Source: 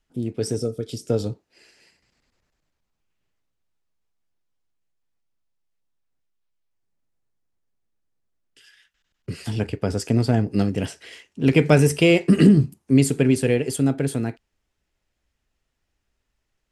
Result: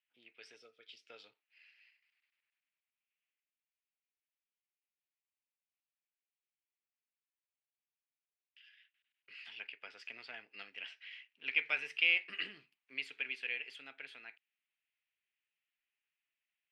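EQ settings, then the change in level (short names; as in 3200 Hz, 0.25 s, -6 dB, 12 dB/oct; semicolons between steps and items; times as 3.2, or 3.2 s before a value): resonant high-pass 2500 Hz, resonance Q 2.6; air absorption 330 m; high shelf 3600 Hz -6.5 dB; -5.5 dB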